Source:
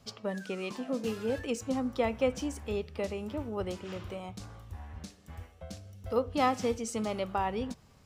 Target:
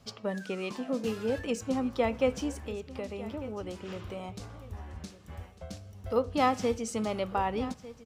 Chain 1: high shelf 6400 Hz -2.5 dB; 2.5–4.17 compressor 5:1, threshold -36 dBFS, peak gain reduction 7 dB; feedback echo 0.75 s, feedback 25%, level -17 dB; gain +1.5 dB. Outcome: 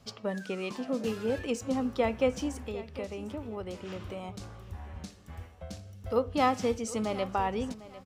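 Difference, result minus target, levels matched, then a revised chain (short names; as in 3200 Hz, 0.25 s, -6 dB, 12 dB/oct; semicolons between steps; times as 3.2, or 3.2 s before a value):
echo 0.45 s early
high shelf 6400 Hz -2.5 dB; 2.5–4.17 compressor 5:1, threshold -36 dBFS, peak gain reduction 7 dB; feedback echo 1.2 s, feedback 25%, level -17 dB; gain +1.5 dB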